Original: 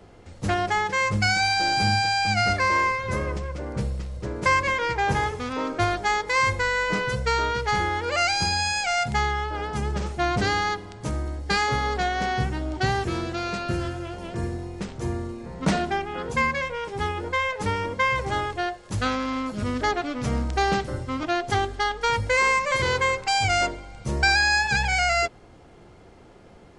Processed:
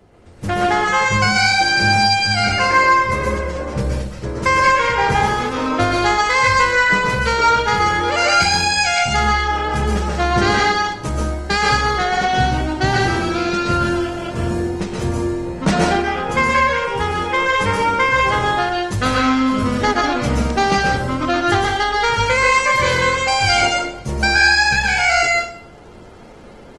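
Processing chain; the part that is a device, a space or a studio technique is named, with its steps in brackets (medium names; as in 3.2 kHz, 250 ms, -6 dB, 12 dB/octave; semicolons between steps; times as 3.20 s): speakerphone in a meeting room (reverberation RT60 0.50 s, pre-delay 117 ms, DRR -1.5 dB; speakerphone echo 230 ms, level -24 dB; level rider gain up to 8 dB; trim -1 dB; Opus 24 kbps 48 kHz)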